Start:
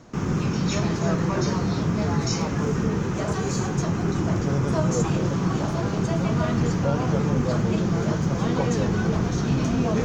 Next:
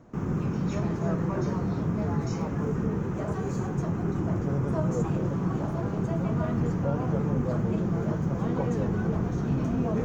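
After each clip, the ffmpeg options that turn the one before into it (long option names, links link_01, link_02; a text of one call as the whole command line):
ffmpeg -i in.wav -af "equalizer=frequency=4700:width=0.56:gain=-14.5,volume=-4dB" out.wav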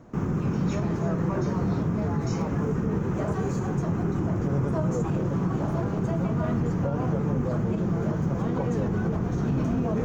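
ffmpeg -i in.wav -af "alimiter=limit=-21dB:level=0:latency=1:release=94,volume=3.5dB" out.wav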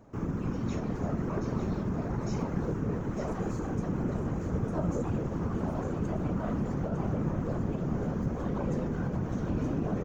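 ffmpeg -i in.wav -af "afftfilt=real='hypot(re,im)*cos(2*PI*random(0))':imag='hypot(re,im)*sin(2*PI*random(1))':win_size=512:overlap=0.75,aecho=1:1:904:0.422" out.wav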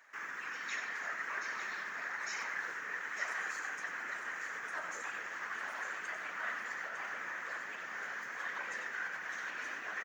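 ffmpeg -i in.wav -af "highpass=frequency=1800:width_type=q:width=5.2,aecho=1:1:94:0.376,volume=3dB" out.wav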